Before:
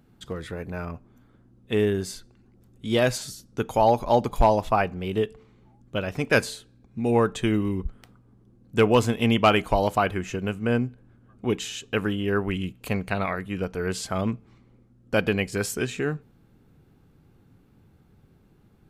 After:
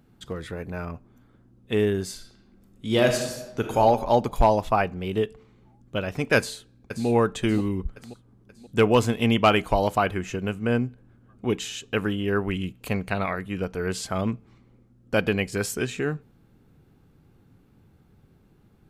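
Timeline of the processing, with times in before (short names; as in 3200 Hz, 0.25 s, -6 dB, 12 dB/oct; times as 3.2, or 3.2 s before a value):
2.13–3.81 reverb throw, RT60 1.1 s, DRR 4 dB
6.37–7.07 echo throw 0.53 s, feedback 50%, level -9.5 dB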